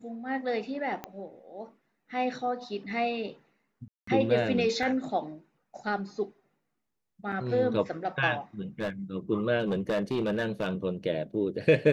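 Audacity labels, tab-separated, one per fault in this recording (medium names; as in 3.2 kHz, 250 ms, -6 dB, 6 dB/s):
1.040000	1.040000	pop -21 dBFS
3.880000	4.070000	dropout 194 ms
4.830000	4.830000	dropout 2.8 ms
7.320000	7.330000	dropout 5 ms
8.800000	8.900000	clipped -26.5 dBFS
9.590000	10.710000	clipped -23.5 dBFS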